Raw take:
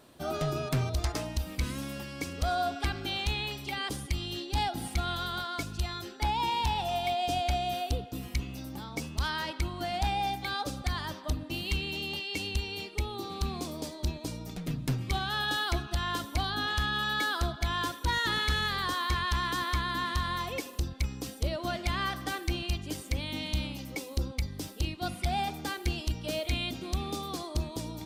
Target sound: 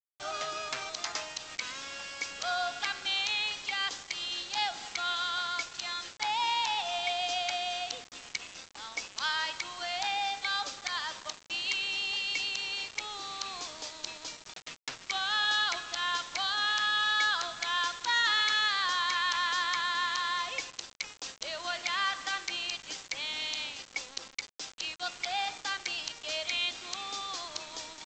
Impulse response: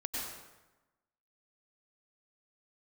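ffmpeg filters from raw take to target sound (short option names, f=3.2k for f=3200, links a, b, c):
-af "highpass=1.1k,aresample=16000,acrusher=bits=7:mix=0:aa=0.000001,aresample=44100,volume=4dB"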